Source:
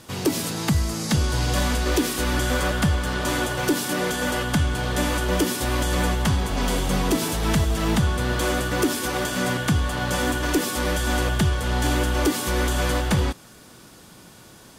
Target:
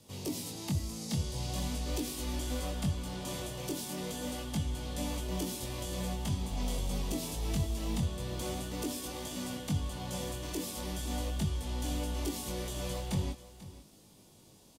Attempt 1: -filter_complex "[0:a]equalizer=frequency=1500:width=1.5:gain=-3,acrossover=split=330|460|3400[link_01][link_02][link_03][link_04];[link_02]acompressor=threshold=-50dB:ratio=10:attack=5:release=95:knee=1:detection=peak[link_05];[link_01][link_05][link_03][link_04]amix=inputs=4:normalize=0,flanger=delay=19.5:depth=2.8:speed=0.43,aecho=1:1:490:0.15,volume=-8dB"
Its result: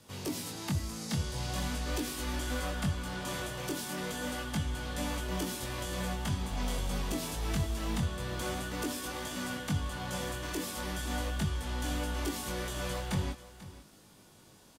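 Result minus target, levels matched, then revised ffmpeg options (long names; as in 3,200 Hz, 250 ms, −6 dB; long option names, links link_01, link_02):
2,000 Hz band +7.5 dB
-filter_complex "[0:a]equalizer=frequency=1500:width=1.5:gain=-15,acrossover=split=330|460|3400[link_01][link_02][link_03][link_04];[link_02]acompressor=threshold=-50dB:ratio=10:attack=5:release=95:knee=1:detection=peak[link_05];[link_01][link_05][link_03][link_04]amix=inputs=4:normalize=0,flanger=delay=19.5:depth=2.8:speed=0.43,aecho=1:1:490:0.15,volume=-8dB"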